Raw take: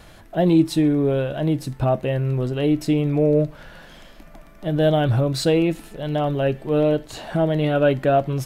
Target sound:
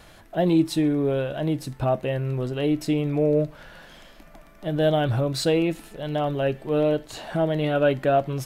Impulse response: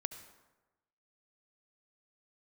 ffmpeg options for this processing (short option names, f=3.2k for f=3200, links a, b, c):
-af "lowshelf=f=320:g=-4,volume=-1.5dB"